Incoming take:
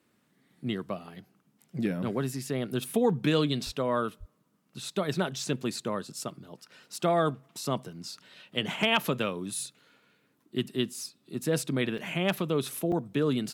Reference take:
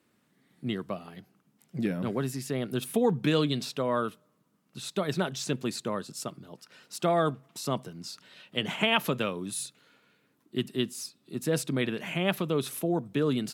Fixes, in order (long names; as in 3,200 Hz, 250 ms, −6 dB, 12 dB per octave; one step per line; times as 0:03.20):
clipped peaks rebuilt −12.5 dBFS
0:03.65–0:03.77: high-pass filter 140 Hz 24 dB per octave
0:04.19–0:04.31: high-pass filter 140 Hz 24 dB per octave
repair the gap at 0:11.98/0:12.92, 3.4 ms